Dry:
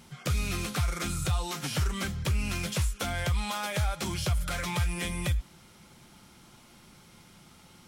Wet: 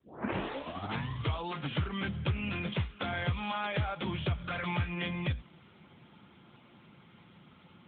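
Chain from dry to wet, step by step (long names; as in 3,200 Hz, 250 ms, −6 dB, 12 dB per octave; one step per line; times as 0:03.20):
turntable start at the beginning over 1.46 s
AMR narrowband 10.2 kbit/s 8,000 Hz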